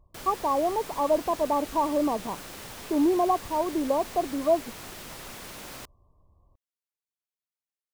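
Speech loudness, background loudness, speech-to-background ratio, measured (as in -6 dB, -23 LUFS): -26.5 LUFS, -40.5 LUFS, 14.0 dB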